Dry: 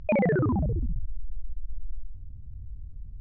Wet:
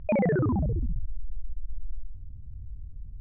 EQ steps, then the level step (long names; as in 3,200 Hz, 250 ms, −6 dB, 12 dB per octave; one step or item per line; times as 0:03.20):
high-frequency loss of the air 360 metres
0.0 dB